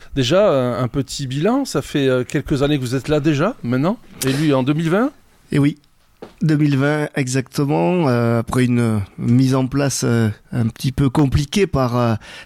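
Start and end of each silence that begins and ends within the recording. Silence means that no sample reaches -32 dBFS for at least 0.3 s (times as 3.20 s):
5.10–5.52 s
5.73–6.22 s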